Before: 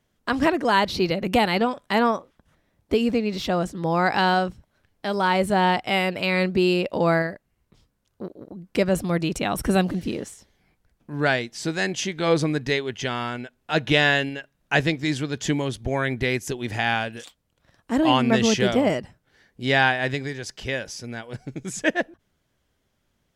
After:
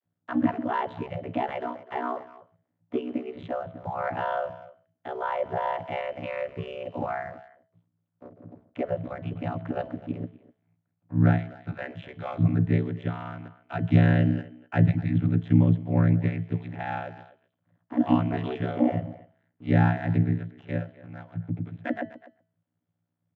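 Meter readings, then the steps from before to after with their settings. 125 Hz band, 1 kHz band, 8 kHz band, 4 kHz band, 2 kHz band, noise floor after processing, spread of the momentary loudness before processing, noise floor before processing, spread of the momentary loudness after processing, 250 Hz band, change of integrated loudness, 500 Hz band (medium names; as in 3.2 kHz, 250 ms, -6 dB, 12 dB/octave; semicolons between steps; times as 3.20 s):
+4.5 dB, -7.5 dB, under -35 dB, under -20 dB, -13.5 dB, -80 dBFS, 13 LU, -72 dBFS, 15 LU, -2.5 dB, -4.5 dB, -8.5 dB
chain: treble shelf 2.5 kHz -11 dB; on a send: delay 134 ms -22 dB; on the sum: resampled via 8 kHz; waveshaping leveller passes 1; speakerphone echo 250 ms, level -17 dB; vocoder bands 32, saw 137 Hz; ring modulator 30 Hz; peaking EQ 410 Hz -10 dB 0.53 oct; de-hum 217.5 Hz, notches 28; MP3 96 kbps 32 kHz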